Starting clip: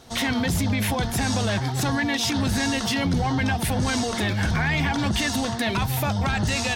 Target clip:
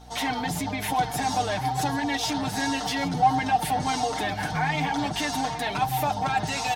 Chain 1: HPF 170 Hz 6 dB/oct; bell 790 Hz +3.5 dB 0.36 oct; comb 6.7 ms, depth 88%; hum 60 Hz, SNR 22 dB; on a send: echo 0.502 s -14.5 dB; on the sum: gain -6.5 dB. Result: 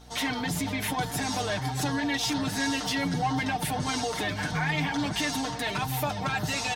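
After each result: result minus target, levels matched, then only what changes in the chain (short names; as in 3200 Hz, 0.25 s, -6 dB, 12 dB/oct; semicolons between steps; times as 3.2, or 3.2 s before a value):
echo 0.278 s early; 1000 Hz band -5.0 dB
change: echo 0.78 s -14.5 dB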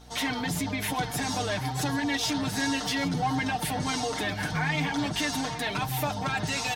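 1000 Hz band -5.0 dB
change: bell 790 Hz +14 dB 0.36 oct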